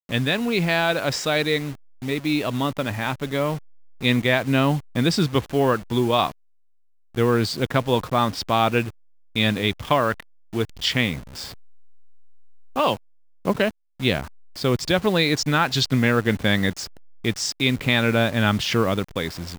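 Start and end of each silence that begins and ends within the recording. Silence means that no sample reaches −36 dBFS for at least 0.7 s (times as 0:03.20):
0:06.32–0:07.15
0:11.52–0:12.76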